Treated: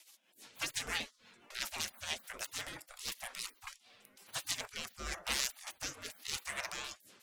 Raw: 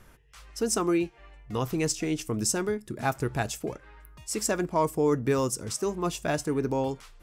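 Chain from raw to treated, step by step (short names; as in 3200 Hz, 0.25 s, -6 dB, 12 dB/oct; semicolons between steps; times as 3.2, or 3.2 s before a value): self-modulated delay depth 0.11 ms; spectral gate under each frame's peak -30 dB weak; rotary speaker horn 6 Hz, later 0.9 Hz, at 3.39; vibrato 15 Hz 42 cents; gain +11.5 dB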